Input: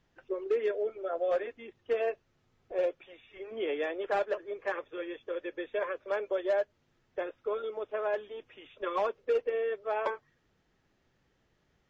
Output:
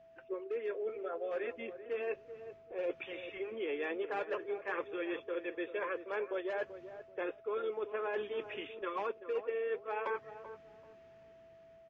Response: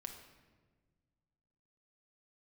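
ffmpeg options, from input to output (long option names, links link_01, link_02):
-filter_complex "[0:a]highpass=frequency=93:poles=1,dynaudnorm=framelen=840:gausssize=5:maxgain=9dB,equalizer=frequency=630:width_type=o:width=0.33:gain=-10,equalizer=frequency=2500:width_type=o:width=0.33:gain=5,equalizer=frequency=4000:width_type=o:width=0.33:gain=-3,areverse,acompressor=threshold=-36dB:ratio=6,areverse,aemphasis=mode=reproduction:type=50kf,aeval=exprs='val(0)+0.00126*sin(2*PI*660*n/s)':channel_layout=same,asplit=2[link_01][link_02];[link_02]adelay=386,lowpass=frequency=950:poles=1,volume=-10.5dB,asplit=2[link_03][link_04];[link_04]adelay=386,lowpass=frequency=950:poles=1,volume=0.27,asplit=2[link_05][link_06];[link_06]adelay=386,lowpass=frequency=950:poles=1,volume=0.27[link_07];[link_03][link_05][link_07]amix=inputs=3:normalize=0[link_08];[link_01][link_08]amix=inputs=2:normalize=0,volume=1dB"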